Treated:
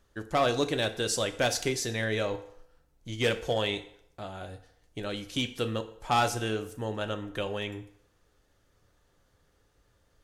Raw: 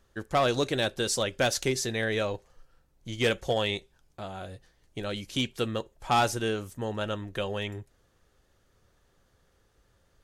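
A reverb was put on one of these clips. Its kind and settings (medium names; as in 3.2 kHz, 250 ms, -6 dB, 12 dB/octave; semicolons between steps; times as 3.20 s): FDN reverb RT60 0.7 s, low-frequency decay 0.7×, high-frequency decay 0.8×, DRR 8.5 dB; trim -1.5 dB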